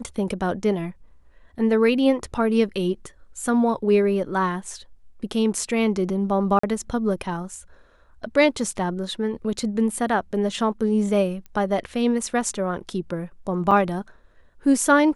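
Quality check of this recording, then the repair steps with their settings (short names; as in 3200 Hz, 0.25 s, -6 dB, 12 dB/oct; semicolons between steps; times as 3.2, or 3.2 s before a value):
6.59–6.63 gap 44 ms
11.46 pop -27 dBFS
13.71 gap 4.8 ms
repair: de-click; interpolate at 6.59, 44 ms; interpolate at 13.71, 4.8 ms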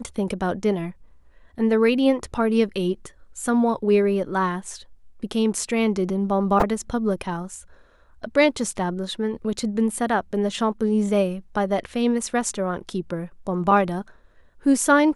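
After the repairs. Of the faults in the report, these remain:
none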